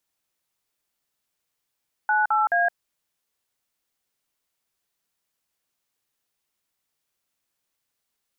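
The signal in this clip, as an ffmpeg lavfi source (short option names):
-f lavfi -i "aevalsrc='0.0944*clip(min(mod(t,0.214),0.167-mod(t,0.214))/0.002,0,1)*(eq(floor(t/0.214),0)*(sin(2*PI*852*mod(t,0.214))+sin(2*PI*1477*mod(t,0.214)))+eq(floor(t/0.214),1)*(sin(2*PI*852*mod(t,0.214))+sin(2*PI*1336*mod(t,0.214)))+eq(floor(t/0.214),2)*(sin(2*PI*697*mod(t,0.214))+sin(2*PI*1633*mod(t,0.214))))':d=0.642:s=44100"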